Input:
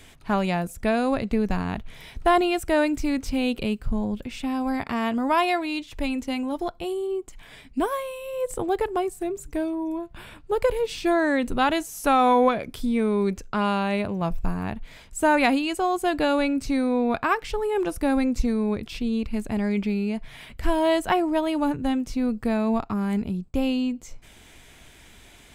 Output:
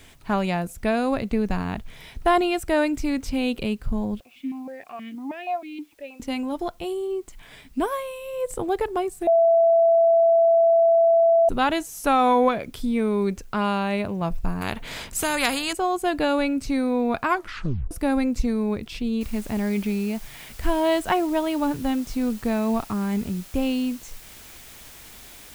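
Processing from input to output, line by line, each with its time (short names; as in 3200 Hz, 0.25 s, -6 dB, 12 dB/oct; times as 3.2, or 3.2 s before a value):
4.2–6.2 vowel sequencer 6.3 Hz
9.27–11.49 bleep 667 Hz -13.5 dBFS
14.61–15.73 spectral compressor 2:1
17.27 tape stop 0.64 s
19.21 noise floor step -65 dB -46 dB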